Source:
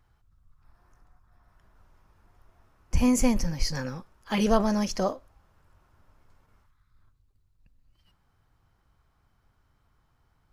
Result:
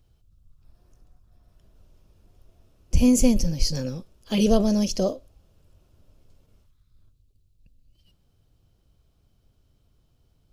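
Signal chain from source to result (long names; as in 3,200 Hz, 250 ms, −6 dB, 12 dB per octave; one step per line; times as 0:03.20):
flat-topped bell 1,300 Hz −14 dB
level +4.5 dB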